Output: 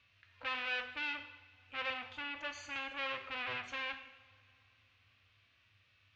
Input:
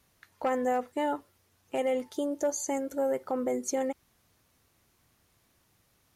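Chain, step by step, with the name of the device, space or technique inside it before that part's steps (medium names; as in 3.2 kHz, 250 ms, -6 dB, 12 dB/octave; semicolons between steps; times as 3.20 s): peaking EQ 260 Hz +13.5 dB 0.94 oct; harmonic-percussive split percussive -16 dB; 1.90–2.76 s: graphic EQ 125/500/1000 Hz +6/-9/+5 dB; scooped metal amplifier (valve stage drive 35 dB, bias 0.45; cabinet simulation 86–3600 Hz, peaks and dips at 100 Hz +9 dB, 160 Hz -8 dB, 230 Hz -7 dB, 850 Hz -8 dB, 2.6 kHz +8 dB; amplifier tone stack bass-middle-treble 10-0-10); two-slope reverb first 0.84 s, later 3.1 s, DRR 6.5 dB; trim +11.5 dB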